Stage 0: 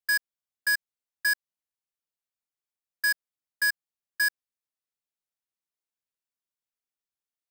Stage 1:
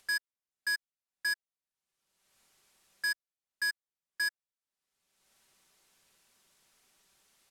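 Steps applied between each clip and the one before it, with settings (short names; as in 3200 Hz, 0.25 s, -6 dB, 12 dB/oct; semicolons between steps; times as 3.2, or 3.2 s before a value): LPF 11000 Hz 12 dB/oct; comb 5.2 ms, depth 33%; upward compressor, threshold -38 dBFS; gain -6 dB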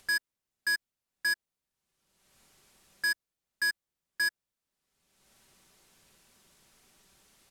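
low shelf 380 Hz +9 dB; in parallel at -6 dB: soft clip -37.5 dBFS, distortion -12 dB; on the sum: gain +1 dB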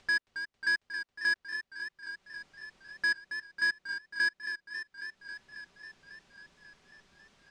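air absorption 130 m; warbling echo 0.272 s, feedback 76%, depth 71 cents, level -9.5 dB; gain +2 dB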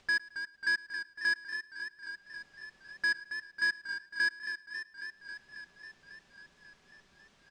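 feedback echo 0.109 s, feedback 48%, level -22 dB; gain -1 dB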